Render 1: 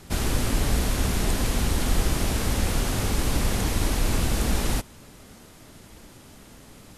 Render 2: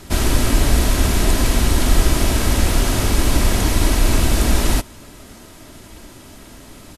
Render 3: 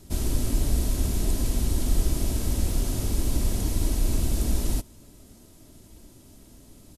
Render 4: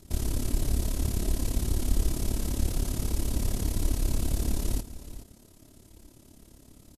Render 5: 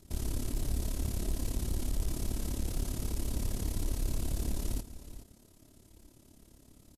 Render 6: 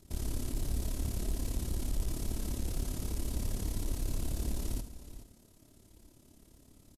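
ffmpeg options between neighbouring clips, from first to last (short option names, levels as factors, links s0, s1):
-af "aecho=1:1:3.1:0.32,volume=2.24"
-af "equalizer=f=1600:t=o:w=2.7:g=-13,volume=0.398"
-af "tremolo=f=35:d=0.75,aecho=1:1:422:0.2"
-af "asoftclip=type=hard:threshold=0.106,volume=0.562"
-af "aecho=1:1:71:0.251,volume=0.841"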